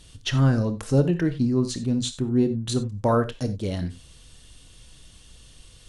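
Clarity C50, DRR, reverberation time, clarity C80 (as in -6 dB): 13.0 dB, 10.0 dB, not exponential, 18.5 dB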